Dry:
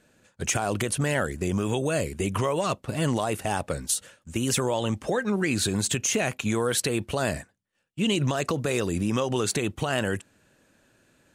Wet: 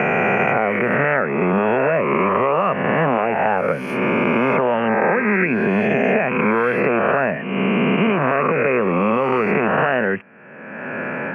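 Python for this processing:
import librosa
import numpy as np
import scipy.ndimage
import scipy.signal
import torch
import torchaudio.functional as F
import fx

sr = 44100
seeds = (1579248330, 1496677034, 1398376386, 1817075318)

p1 = fx.spec_swells(x, sr, rise_s=1.97)
p2 = scipy.signal.sosfilt(scipy.signal.ellip(4, 1.0, 40, 2400.0, 'lowpass', fs=sr, output='sos'), p1)
p3 = fx.rider(p2, sr, range_db=4, speed_s=0.5)
p4 = p2 + (p3 * 10.0 ** (2.0 / 20.0))
p5 = scipy.signal.sosfilt(scipy.signal.butter(4, 170.0, 'highpass', fs=sr, output='sos'), p4)
p6 = fx.peak_eq(p5, sr, hz=310.0, db=-12.5, octaves=0.23)
y = fx.band_squash(p6, sr, depth_pct=100)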